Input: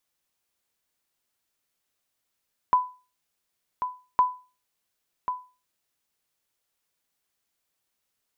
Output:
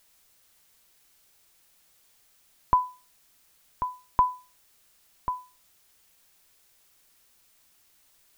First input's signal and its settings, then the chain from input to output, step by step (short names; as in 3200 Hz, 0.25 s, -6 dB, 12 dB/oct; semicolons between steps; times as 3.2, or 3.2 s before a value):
sonar ping 1000 Hz, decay 0.33 s, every 1.46 s, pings 2, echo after 1.09 s, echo -9 dB -12 dBFS
low shelf 160 Hz +10 dB; added noise blue -56 dBFS; tilt -2 dB/oct